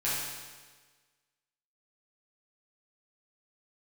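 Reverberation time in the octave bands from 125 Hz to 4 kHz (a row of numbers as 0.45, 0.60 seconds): 1.4, 1.4, 1.5, 1.4, 1.4, 1.4 seconds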